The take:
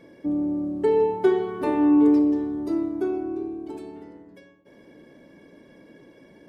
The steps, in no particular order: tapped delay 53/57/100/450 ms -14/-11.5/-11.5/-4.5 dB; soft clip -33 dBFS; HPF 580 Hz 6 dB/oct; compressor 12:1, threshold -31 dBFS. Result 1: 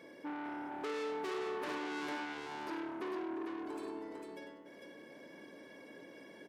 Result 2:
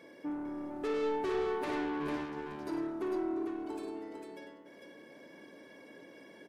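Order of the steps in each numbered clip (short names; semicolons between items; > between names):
soft clip > tapped delay > compressor > HPF; HPF > soft clip > compressor > tapped delay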